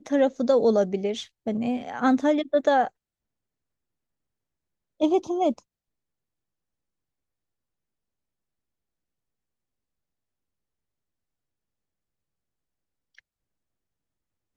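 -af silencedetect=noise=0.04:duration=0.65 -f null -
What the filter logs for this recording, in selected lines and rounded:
silence_start: 2.87
silence_end: 5.01 | silence_duration: 2.14
silence_start: 5.52
silence_end: 14.56 | silence_duration: 9.04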